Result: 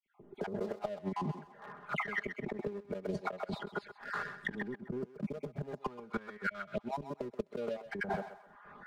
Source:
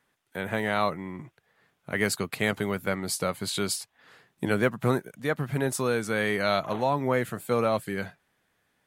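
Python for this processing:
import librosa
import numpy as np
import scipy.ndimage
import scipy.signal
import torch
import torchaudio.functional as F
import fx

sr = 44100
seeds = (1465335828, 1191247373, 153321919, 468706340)

y = fx.spec_dropout(x, sr, seeds[0], share_pct=25)
y = fx.dispersion(y, sr, late='lows', ms=59.0, hz=2400.0)
y = fx.filter_lfo_lowpass(y, sr, shape='saw_up', hz=0.44, low_hz=290.0, high_hz=1700.0, q=2.8)
y = fx.gate_flip(y, sr, shuts_db=-19.0, range_db=-32)
y = fx.peak_eq(y, sr, hz=660.0, db=-5.0, octaves=2.3, at=(4.66, 7.19))
y = fx.leveller(y, sr, passes=1)
y = y + 0.69 * np.pad(y, (int(4.9 * sr / 1000.0), 0))[:len(y)]
y = fx.echo_thinned(y, sr, ms=129, feedback_pct=29, hz=660.0, wet_db=-12.0)
y = fx.over_compress(y, sr, threshold_db=-38.0, ratio=-1.0)
y = fx.dynamic_eq(y, sr, hz=3800.0, q=0.73, threshold_db=-56.0, ratio=4.0, max_db=5)
y = fx.band_squash(y, sr, depth_pct=70)
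y = y * 10.0 ** (2.0 / 20.0)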